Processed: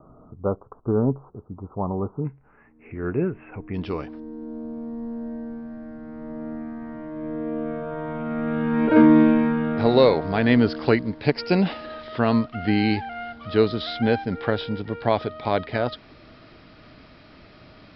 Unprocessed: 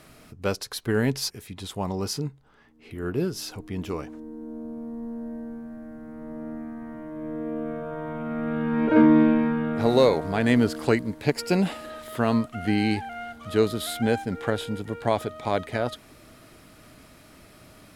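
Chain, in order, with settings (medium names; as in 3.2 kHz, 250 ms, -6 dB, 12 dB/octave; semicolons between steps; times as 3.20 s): steep low-pass 1.3 kHz 96 dB/octave, from 2.24 s 2.6 kHz, from 3.73 s 5.2 kHz; trim +2.5 dB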